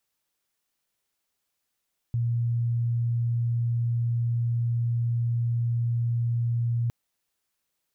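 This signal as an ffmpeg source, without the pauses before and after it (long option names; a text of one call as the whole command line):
ffmpeg -f lavfi -i "sine=frequency=118:duration=4.76:sample_rate=44100,volume=-4.44dB" out.wav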